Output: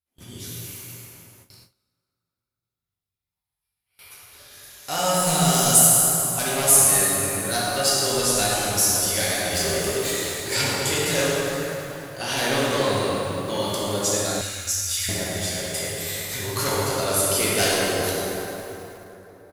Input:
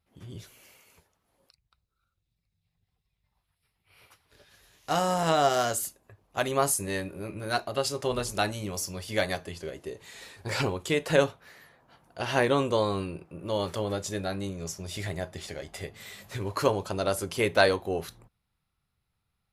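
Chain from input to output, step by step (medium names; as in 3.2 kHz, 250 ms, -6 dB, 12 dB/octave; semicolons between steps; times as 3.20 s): 5.14–5.79 s: fifteen-band graphic EQ 160 Hz +11 dB, 630 Hz -6 dB, 1.6 kHz -7 dB, 10 kHz +11 dB; 9.52–10.11 s: waveshaping leveller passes 3; on a send: delay 84 ms -19.5 dB; on the sum: sine folder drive 12 dB, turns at -4.5 dBFS; in parallel at -2 dB: compression, threshold -20 dBFS, peak gain reduction 12.5 dB; on the sum: pre-emphasis filter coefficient 0.8; plate-style reverb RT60 3.7 s, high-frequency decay 0.55×, DRR -7 dB; gate with hold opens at -30 dBFS; 14.41–15.09 s: inverse Chebyshev band-stop 180–690 Hz, stop band 50 dB; bit-crushed delay 107 ms, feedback 80%, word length 5-bit, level -14 dB; trim -7.5 dB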